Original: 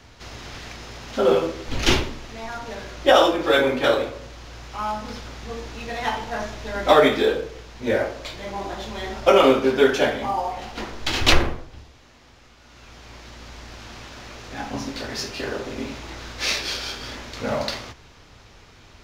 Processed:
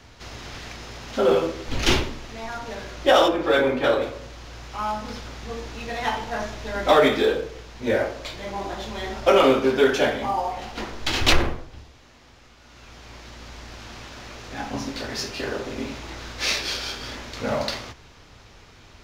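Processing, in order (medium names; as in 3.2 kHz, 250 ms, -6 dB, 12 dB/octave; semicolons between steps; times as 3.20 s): 3.28–4.02 s: treble shelf 3.6 kHz -8.5 dB; in parallel at -5 dB: hard clipper -15.5 dBFS, distortion -8 dB; on the sum: trim -4 dB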